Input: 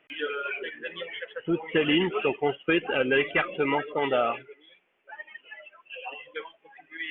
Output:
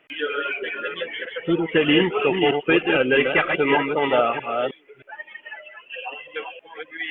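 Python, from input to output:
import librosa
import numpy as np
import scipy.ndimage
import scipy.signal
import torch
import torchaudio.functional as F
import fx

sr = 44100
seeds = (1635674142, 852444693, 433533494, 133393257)

y = fx.reverse_delay(x, sr, ms=314, wet_db=-4.5)
y = y * 10.0 ** (5.0 / 20.0)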